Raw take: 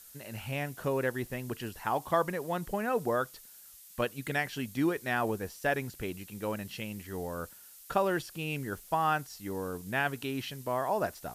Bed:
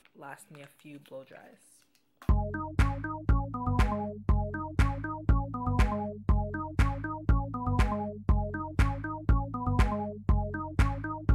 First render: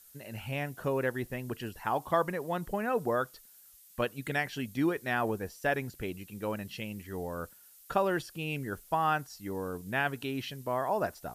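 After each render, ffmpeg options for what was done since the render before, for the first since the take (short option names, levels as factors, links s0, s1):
-af "afftdn=nr=6:nf=-53"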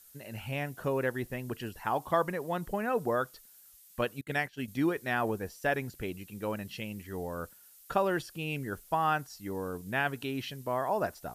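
-filter_complex "[0:a]asettb=1/sr,asplit=3[s0][s1][s2];[s0]atrim=end=4.214[s3];[s1]atrim=start=4.21:end=4.68,asetpts=PTS-STARTPTS,afade=t=in:d=0.004:c=qsin,afade=t=out:st=0.466:d=0.004:c=qsin,agate=range=0.0224:threshold=0.02:ratio=3:release=100:detection=peak[s4];[s2]atrim=start=4.676[s5];[s3][s4]acrossfade=d=0.004:c1=hsin:c2=qsin[s6];[s6][s5]acrossfade=d=0.004:c1=qsin:c2=hsin"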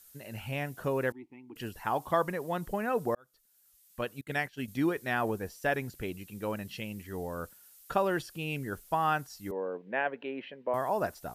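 -filter_complex "[0:a]asettb=1/sr,asplit=3[s0][s1][s2];[s0]atrim=end=1.124[s3];[s1]atrim=start=1.12:end=1.56,asetpts=PTS-STARTPTS,afade=t=in:d=0.004:c=qsin,afade=t=out:st=0.436:d=0.004:c=qsin,asplit=3[s4][s5][s6];[s4]bandpass=f=300:t=q:w=8,volume=1[s7];[s5]bandpass=f=870:t=q:w=8,volume=0.501[s8];[s6]bandpass=f=2240:t=q:w=8,volume=0.355[s9];[s7][s8][s9]amix=inputs=3:normalize=0[s10];[s2]atrim=start=1.556[s11];[s3][s10]acrossfade=d=0.004:c1=hsin:c2=qsin[s12];[s12][s11]acrossfade=d=0.004:c1=qsin:c2=hsin,asettb=1/sr,asplit=3[s13][s14][s15];[s13]atrim=end=9.514[s16];[s14]atrim=start=9.51:end=10.74,asetpts=PTS-STARTPTS,afade=t=in:d=0.004:c=qsin,afade=t=out:st=1.226:d=0.004:c=qsin,highpass=f=230:w=0.5412,highpass=f=230:w=1.3066,equalizer=f=290:t=q:w=4:g=-5,equalizer=f=540:t=q:w=4:g=8,equalizer=f=1300:t=q:w=4:g=-7,lowpass=f=2500:w=0.5412,lowpass=f=2500:w=1.3066[s17];[s15]atrim=start=10.736[s18];[s16][s17]acrossfade=d=0.004:c1=hsin:c2=qsin[s19];[s19][s18]acrossfade=d=0.004:c1=qsin:c2=hsin,asplit=2[s20][s21];[s20]atrim=end=3.15,asetpts=PTS-STARTPTS,afade=t=out:st=3.146:d=0.004:c=hsin[s22];[s21]atrim=start=3.15,asetpts=PTS-STARTPTS,afade=t=in:d=1.33[s23];[s22][s23]concat=n=2:v=0:a=1"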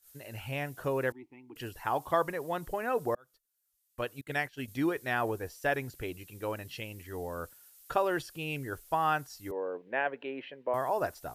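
-af "agate=range=0.2:threshold=0.00141:ratio=16:detection=peak,equalizer=f=200:t=o:w=0.33:g=-13.5"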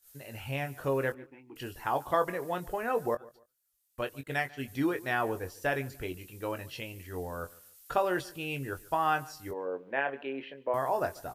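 -filter_complex "[0:a]asplit=2[s0][s1];[s1]adelay=22,volume=0.376[s2];[s0][s2]amix=inputs=2:normalize=0,asplit=2[s3][s4];[s4]adelay=144,lowpass=f=3800:p=1,volume=0.0841,asplit=2[s5][s6];[s6]adelay=144,lowpass=f=3800:p=1,volume=0.29[s7];[s3][s5][s7]amix=inputs=3:normalize=0"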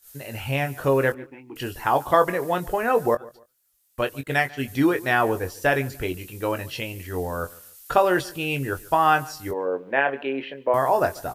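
-af "volume=2.99"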